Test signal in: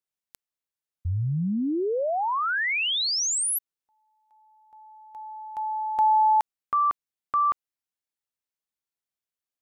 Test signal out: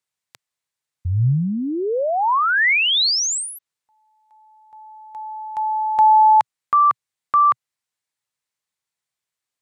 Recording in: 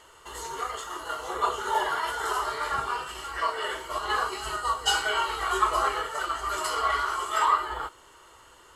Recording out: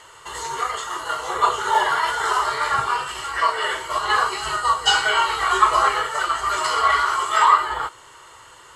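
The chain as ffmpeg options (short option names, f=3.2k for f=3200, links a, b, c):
-filter_complex "[0:a]acrossover=split=6700[a][b];[b]acompressor=threshold=-46dB:ratio=4:attack=1:release=60[c];[a][c]amix=inputs=2:normalize=0,equalizer=f=125:t=o:w=1:g=11,equalizer=f=500:t=o:w=1:g=4,equalizer=f=1k:t=o:w=1:g=7,equalizer=f=2k:t=o:w=1:g=8,equalizer=f=4k:t=o:w=1:g=6,equalizer=f=8k:t=o:w=1:g=9,volume=-1dB"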